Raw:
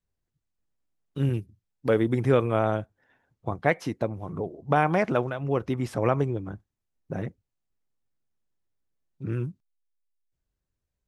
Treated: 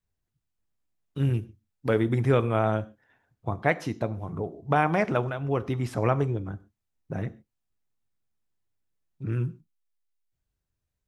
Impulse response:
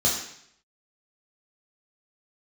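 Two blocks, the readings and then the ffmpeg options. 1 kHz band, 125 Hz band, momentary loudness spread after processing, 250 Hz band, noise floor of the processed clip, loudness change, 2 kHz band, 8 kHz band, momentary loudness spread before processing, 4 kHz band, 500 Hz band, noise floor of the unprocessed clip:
-0.5 dB, +1.5 dB, 15 LU, -1.0 dB, -83 dBFS, -0.5 dB, 0.0 dB, n/a, 15 LU, 0.0 dB, -1.5 dB, -84 dBFS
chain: -filter_complex "[0:a]asplit=2[a][b];[1:a]atrim=start_sample=2205,atrim=end_sample=6615[c];[b][c]afir=irnorm=-1:irlink=0,volume=-26dB[d];[a][d]amix=inputs=2:normalize=0"

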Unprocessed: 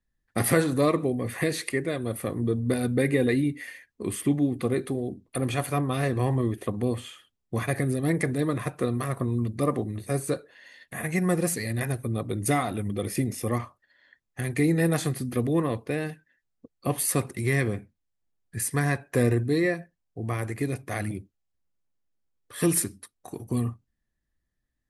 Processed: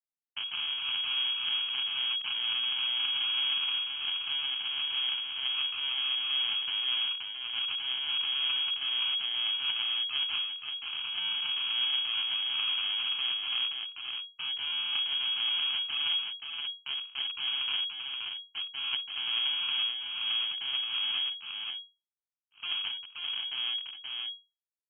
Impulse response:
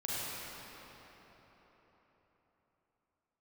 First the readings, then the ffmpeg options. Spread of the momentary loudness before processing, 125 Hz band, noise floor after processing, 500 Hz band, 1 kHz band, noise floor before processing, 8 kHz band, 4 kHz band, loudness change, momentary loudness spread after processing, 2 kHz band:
11 LU, under -40 dB, under -85 dBFS, under -35 dB, -11.5 dB, -80 dBFS, under -40 dB, +19.0 dB, -2.0 dB, 8 LU, -2.5 dB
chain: -filter_complex "[0:a]highpass=96,acrossover=split=2600[a][b];[b]acompressor=threshold=-48dB:ratio=4:attack=1:release=60[c];[a][c]amix=inputs=2:normalize=0,agate=range=-33dB:threshold=-44dB:ratio=3:detection=peak,equalizer=f=380:w=1.9:g=-5.5,areverse,acompressor=threshold=-39dB:ratio=12,areverse,acrusher=samples=32:mix=1:aa=0.000001,asoftclip=type=tanh:threshold=-32.5dB,aeval=exprs='0.02*(cos(1*acos(clip(val(0)/0.02,-1,1)))-cos(1*PI/2))+0.00631*(cos(3*acos(clip(val(0)/0.02,-1,1)))-cos(3*PI/2))+0.00794*(cos(6*acos(clip(val(0)/0.02,-1,1)))-cos(6*PI/2))':c=same,asplit=2[d][e];[e]aecho=0:1:526:0.631[f];[d][f]amix=inputs=2:normalize=0,lowpass=f=2.8k:t=q:w=0.5098,lowpass=f=2.8k:t=q:w=0.6013,lowpass=f=2.8k:t=q:w=0.9,lowpass=f=2.8k:t=q:w=2.563,afreqshift=-3300,volume=7dB"

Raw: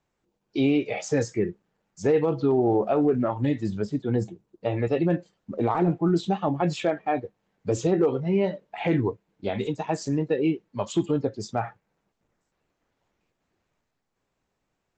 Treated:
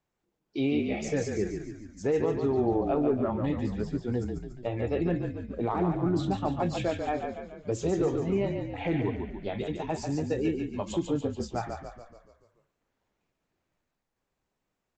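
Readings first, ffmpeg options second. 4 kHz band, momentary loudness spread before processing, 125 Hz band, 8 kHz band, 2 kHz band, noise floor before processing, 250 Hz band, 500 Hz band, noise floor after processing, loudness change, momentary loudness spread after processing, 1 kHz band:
-4.0 dB, 9 LU, -3.5 dB, -4.0 dB, -4.0 dB, -79 dBFS, -4.0 dB, -4.5 dB, -83 dBFS, -4.5 dB, 9 LU, -4.5 dB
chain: -filter_complex "[0:a]asplit=8[a][b][c][d][e][f][g][h];[b]adelay=143,afreqshift=-37,volume=-5.5dB[i];[c]adelay=286,afreqshift=-74,volume=-10.9dB[j];[d]adelay=429,afreqshift=-111,volume=-16.2dB[k];[e]adelay=572,afreqshift=-148,volume=-21.6dB[l];[f]adelay=715,afreqshift=-185,volume=-26.9dB[m];[g]adelay=858,afreqshift=-222,volume=-32.3dB[n];[h]adelay=1001,afreqshift=-259,volume=-37.6dB[o];[a][i][j][k][l][m][n][o]amix=inputs=8:normalize=0,volume=-5.5dB"

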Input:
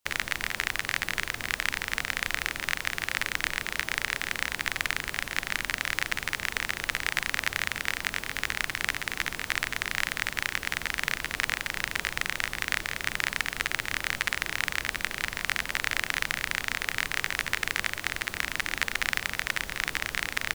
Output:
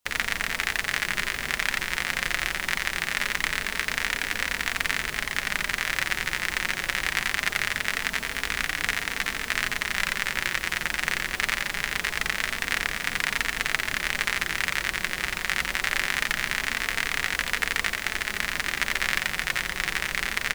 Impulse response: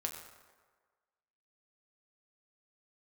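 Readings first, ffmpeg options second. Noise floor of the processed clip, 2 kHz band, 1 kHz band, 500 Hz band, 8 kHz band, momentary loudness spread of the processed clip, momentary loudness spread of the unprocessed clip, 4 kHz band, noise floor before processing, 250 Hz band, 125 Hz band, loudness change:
-37 dBFS, +3.0 dB, +3.5 dB, +3.5 dB, +3.0 dB, 2 LU, 2 LU, +3.0 dB, -42 dBFS, +3.5 dB, +2.0 dB, +3.0 dB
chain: -filter_complex "[0:a]flanger=delay=4.1:depth=1.5:regen=-43:speed=0.23:shape=triangular,asplit=2[a][b];[b]aecho=0:1:87:0.668[c];[a][c]amix=inputs=2:normalize=0,volume=5.5dB"

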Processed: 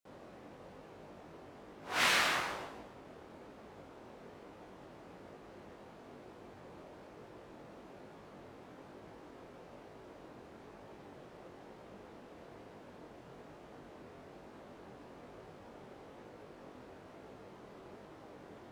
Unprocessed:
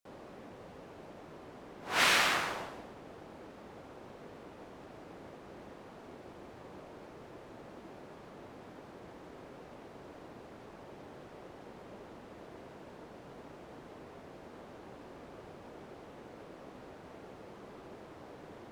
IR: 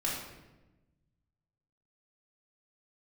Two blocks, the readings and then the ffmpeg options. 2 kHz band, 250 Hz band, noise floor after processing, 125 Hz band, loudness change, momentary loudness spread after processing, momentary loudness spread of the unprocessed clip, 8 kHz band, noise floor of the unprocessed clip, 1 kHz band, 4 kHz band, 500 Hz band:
-2.5 dB, -3.0 dB, -55 dBFS, -3.0 dB, -0.5 dB, 9 LU, 8 LU, -3.0 dB, -52 dBFS, -3.0 dB, -3.0 dB, -3.0 dB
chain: -af "flanger=delay=18.5:depth=5.5:speed=1.1"

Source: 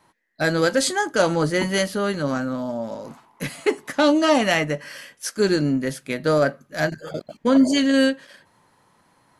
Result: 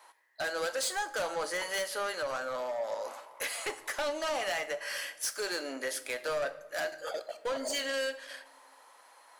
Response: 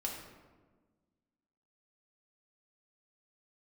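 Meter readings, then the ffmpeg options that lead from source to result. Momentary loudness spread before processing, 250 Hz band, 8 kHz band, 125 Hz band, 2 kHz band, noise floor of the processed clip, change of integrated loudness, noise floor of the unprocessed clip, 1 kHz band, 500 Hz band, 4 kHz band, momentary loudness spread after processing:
14 LU, -26.5 dB, -6.0 dB, -31.5 dB, -9.0 dB, -59 dBFS, -13.0 dB, -61 dBFS, -10.0 dB, -12.0 dB, -9.0 dB, 6 LU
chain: -filter_complex "[0:a]highpass=f=530:w=0.5412,highpass=f=530:w=1.3066,acompressor=threshold=-34dB:ratio=2.5,asoftclip=type=tanh:threshold=-31.5dB,asplit=2[a][b];[1:a]atrim=start_sample=2205,highshelf=f=6k:g=11[c];[b][c]afir=irnorm=-1:irlink=0,volume=-11dB[d];[a][d]amix=inputs=2:normalize=0,volume=1.5dB"

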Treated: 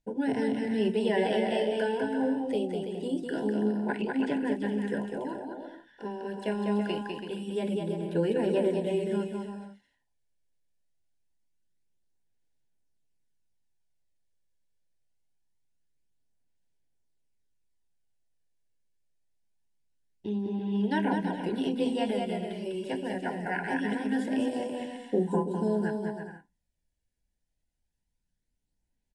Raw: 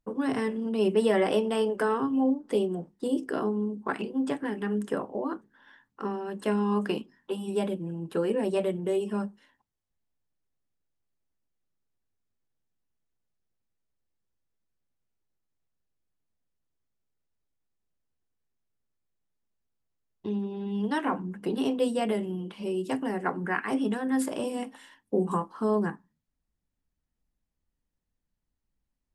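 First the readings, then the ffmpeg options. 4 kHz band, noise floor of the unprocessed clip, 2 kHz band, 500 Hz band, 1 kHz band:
+0.5 dB, -83 dBFS, 0.0 dB, -1.0 dB, -2.0 dB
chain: -filter_complex "[0:a]acrossover=split=4500[a][b];[b]acompressor=threshold=-57dB:ratio=4:attack=1:release=60[c];[a][c]amix=inputs=2:normalize=0,highshelf=f=2.8k:g=4,aecho=1:1:200|330|414.5|469.4|505.1:0.631|0.398|0.251|0.158|0.1,aphaser=in_gain=1:out_gain=1:delay=1.8:decay=0.28:speed=0.24:type=sinusoidal,asuperstop=centerf=1200:order=20:qfactor=3.1,volume=-3.5dB" -ar 24000 -c:a aac -b:a 64k

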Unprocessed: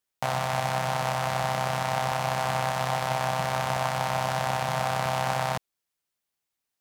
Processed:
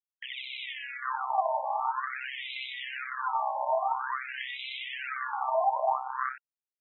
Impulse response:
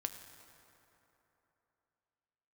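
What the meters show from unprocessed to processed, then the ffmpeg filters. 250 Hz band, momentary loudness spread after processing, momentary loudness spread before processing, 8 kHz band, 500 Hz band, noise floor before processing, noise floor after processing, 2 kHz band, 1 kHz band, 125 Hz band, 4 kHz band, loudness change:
under -40 dB, 9 LU, 1 LU, under -40 dB, -4.5 dB, -85 dBFS, under -85 dBFS, -3.5 dB, -2.5 dB, under -40 dB, -4.5 dB, -4.5 dB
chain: -filter_complex "[0:a]aphaser=in_gain=1:out_gain=1:delay=3.6:decay=0.77:speed=0.55:type=sinusoidal,acrossover=split=1700[a][b];[a]adelay=800[c];[c][b]amix=inputs=2:normalize=0,acrusher=bits=7:dc=4:mix=0:aa=0.000001,afftfilt=real='re*between(b*sr/1024,770*pow(2900/770,0.5+0.5*sin(2*PI*0.48*pts/sr))/1.41,770*pow(2900/770,0.5+0.5*sin(2*PI*0.48*pts/sr))*1.41)':imag='im*between(b*sr/1024,770*pow(2900/770,0.5+0.5*sin(2*PI*0.48*pts/sr))/1.41,770*pow(2900/770,0.5+0.5*sin(2*PI*0.48*pts/sr))*1.41)':win_size=1024:overlap=0.75,volume=-1.5dB"

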